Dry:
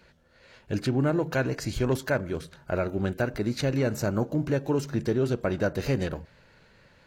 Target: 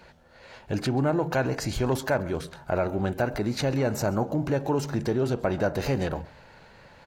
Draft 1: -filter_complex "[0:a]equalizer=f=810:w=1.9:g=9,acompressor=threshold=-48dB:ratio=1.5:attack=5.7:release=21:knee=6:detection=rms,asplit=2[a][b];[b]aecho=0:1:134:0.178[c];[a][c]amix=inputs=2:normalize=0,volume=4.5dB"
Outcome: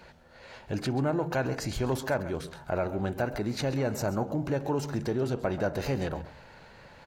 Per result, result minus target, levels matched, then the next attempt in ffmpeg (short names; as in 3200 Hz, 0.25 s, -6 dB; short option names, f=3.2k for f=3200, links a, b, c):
echo-to-direct +7 dB; compressor: peak gain reduction +3.5 dB
-filter_complex "[0:a]equalizer=f=810:w=1.9:g=9,acompressor=threshold=-48dB:ratio=1.5:attack=5.7:release=21:knee=6:detection=rms,asplit=2[a][b];[b]aecho=0:1:134:0.0794[c];[a][c]amix=inputs=2:normalize=0,volume=4.5dB"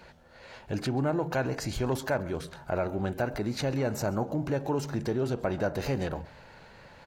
compressor: peak gain reduction +3.5 dB
-filter_complex "[0:a]equalizer=f=810:w=1.9:g=9,acompressor=threshold=-37dB:ratio=1.5:attack=5.7:release=21:knee=6:detection=rms,asplit=2[a][b];[b]aecho=0:1:134:0.0794[c];[a][c]amix=inputs=2:normalize=0,volume=4.5dB"